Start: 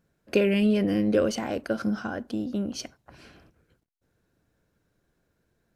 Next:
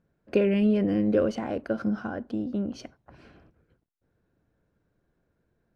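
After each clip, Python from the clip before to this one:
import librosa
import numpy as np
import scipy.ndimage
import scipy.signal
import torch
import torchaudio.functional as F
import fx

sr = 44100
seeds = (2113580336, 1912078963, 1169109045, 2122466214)

y = fx.lowpass(x, sr, hz=1400.0, slope=6)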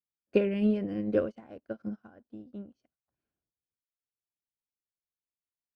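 y = fx.upward_expand(x, sr, threshold_db=-44.0, expansion=2.5)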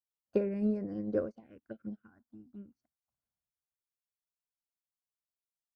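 y = fx.env_phaser(x, sr, low_hz=370.0, high_hz=3100.0, full_db=-27.5)
y = y * 10.0 ** (-4.5 / 20.0)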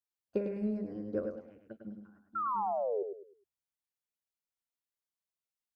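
y = fx.spec_paint(x, sr, seeds[0], shape='fall', start_s=2.35, length_s=0.68, low_hz=380.0, high_hz=1400.0, level_db=-30.0)
y = fx.echo_feedback(y, sr, ms=103, feedback_pct=31, wet_db=-6)
y = y * 10.0 ** (-3.5 / 20.0)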